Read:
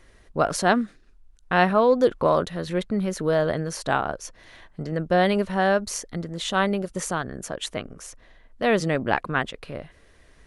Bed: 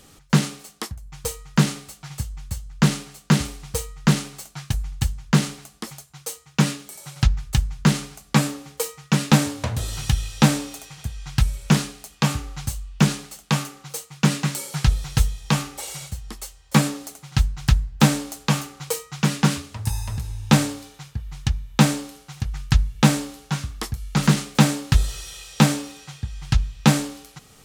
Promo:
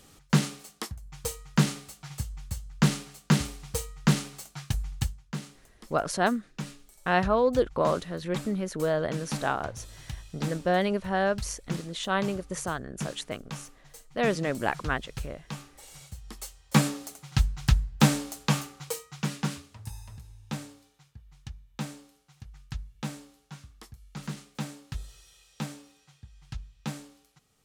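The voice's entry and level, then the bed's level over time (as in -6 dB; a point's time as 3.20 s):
5.55 s, -5.0 dB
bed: 5.01 s -5 dB
5.25 s -18 dB
15.78 s -18 dB
16.45 s -4.5 dB
18.49 s -4.5 dB
20.49 s -19.5 dB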